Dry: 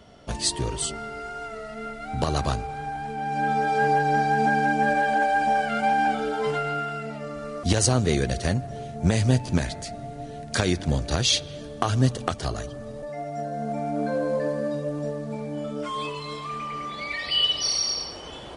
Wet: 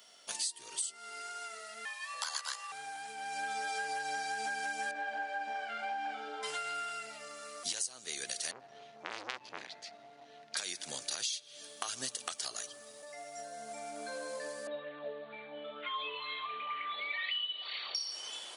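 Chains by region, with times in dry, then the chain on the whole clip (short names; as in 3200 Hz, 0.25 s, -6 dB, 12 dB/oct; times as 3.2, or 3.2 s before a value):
1.85–2.72 weighting filter A + frequency shift +380 Hz
4.91–6.43 tape spacing loss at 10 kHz 31 dB + doubler 44 ms -5.5 dB
8.51–10.57 air absorption 260 m + core saturation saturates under 1600 Hz
14.67–17.95 steep low-pass 3900 Hz 96 dB/oct + LFO bell 2.1 Hz 390–2100 Hz +9 dB
whole clip: Bessel high-pass 210 Hz, order 2; differentiator; compressor 16:1, threshold -40 dBFS; gain +6.5 dB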